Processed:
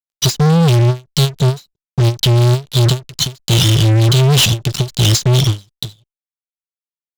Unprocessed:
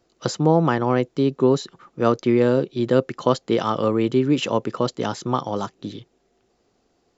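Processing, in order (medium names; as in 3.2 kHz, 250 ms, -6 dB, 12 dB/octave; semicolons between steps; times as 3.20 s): elliptic band-stop 130–3300 Hz, stop band 40 dB; fuzz box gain 44 dB, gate -52 dBFS; endings held to a fixed fall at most 270 dB/s; trim +4 dB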